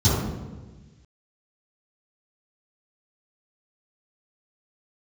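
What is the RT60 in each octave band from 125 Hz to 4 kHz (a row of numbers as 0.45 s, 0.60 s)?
1.7 s, 1.5 s, 1.4 s, 1.2 s, 1.3 s, 0.90 s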